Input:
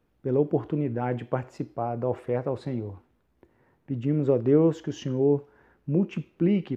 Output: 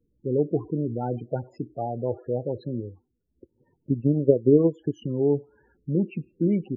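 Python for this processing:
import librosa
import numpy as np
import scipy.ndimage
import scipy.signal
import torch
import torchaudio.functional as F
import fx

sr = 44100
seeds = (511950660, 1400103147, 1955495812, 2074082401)

y = fx.transient(x, sr, attack_db=8, sustain_db=-9, at=(2.79, 5.06))
y = fx.spec_topn(y, sr, count=16)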